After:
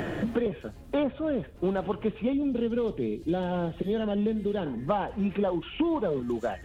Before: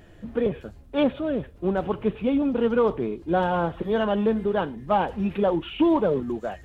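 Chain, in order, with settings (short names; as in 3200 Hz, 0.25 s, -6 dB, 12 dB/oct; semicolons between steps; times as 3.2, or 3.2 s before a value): 2.33–4.66 bell 1100 Hz -14 dB 1.5 oct; three-band squash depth 100%; gain -4 dB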